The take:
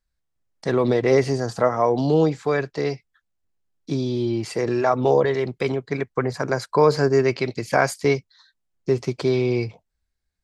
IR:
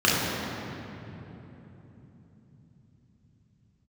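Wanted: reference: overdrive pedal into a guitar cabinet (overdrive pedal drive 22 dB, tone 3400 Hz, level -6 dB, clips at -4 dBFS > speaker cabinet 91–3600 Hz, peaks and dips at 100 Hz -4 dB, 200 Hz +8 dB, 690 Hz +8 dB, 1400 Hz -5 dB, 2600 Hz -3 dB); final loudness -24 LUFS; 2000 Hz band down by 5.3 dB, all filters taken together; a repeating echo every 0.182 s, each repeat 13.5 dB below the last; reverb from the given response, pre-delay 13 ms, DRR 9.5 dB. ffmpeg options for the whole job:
-filter_complex "[0:a]equalizer=f=2k:t=o:g=-4,aecho=1:1:182|364:0.211|0.0444,asplit=2[a][b];[1:a]atrim=start_sample=2205,adelay=13[c];[b][c]afir=irnorm=-1:irlink=0,volume=-29dB[d];[a][d]amix=inputs=2:normalize=0,asplit=2[e][f];[f]highpass=f=720:p=1,volume=22dB,asoftclip=type=tanh:threshold=-4dB[g];[e][g]amix=inputs=2:normalize=0,lowpass=f=3.4k:p=1,volume=-6dB,highpass=91,equalizer=f=100:t=q:w=4:g=-4,equalizer=f=200:t=q:w=4:g=8,equalizer=f=690:t=q:w=4:g=8,equalizer=f=1.4k:t=q:w=4:g=-5,equalizer=f=2.6k:t=q:w=4:g=-3,lowpass=f=3.6k:w=0.5412,lowpass=f=3.6k:w=1.3066,volume=-10dB"

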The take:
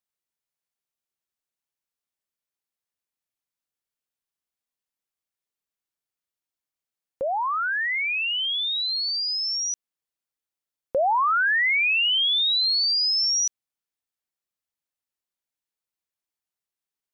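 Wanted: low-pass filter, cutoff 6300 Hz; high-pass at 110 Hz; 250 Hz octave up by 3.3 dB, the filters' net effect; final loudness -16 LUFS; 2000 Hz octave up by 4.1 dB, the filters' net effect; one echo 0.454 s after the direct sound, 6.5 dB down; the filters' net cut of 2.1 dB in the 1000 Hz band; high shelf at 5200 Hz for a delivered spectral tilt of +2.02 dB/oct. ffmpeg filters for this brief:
-af "highpass=110,lowpass=6.3k,equalizer=f=250:t=o:g=5,equalizer=f=1k:t=o:g=-5,equalizer=f=2k:t=o:g=5.5,highshelf=f=5.2k:g=5,aecho=1:1:454:0.473,volume=2dB"

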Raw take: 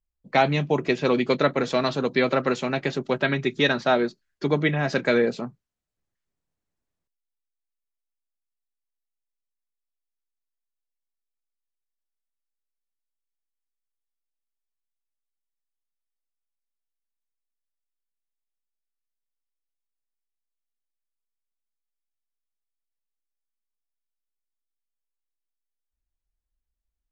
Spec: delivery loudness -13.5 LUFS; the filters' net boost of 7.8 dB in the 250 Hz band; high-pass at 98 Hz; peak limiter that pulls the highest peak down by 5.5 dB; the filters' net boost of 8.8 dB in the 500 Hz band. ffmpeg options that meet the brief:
-af "highpass=98,equalizer=f=250:t=o:g=6.5,equalizer=f=500:t=o:g=9,volume=5dB,alimiter=limit=-1.5dB:level=0:latency=1"

